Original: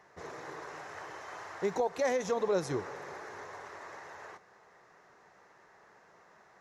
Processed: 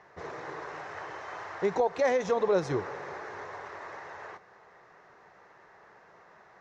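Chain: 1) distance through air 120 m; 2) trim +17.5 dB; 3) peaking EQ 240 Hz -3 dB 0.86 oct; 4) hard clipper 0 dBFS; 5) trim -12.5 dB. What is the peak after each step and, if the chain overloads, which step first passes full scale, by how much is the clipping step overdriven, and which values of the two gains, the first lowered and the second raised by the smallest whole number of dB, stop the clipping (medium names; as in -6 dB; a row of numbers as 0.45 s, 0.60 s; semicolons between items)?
-21.0 dBFS, -3.5 dBFS, -4.0 dBFS, -4.0 dBFS, -16.5 dBFS; nothing clips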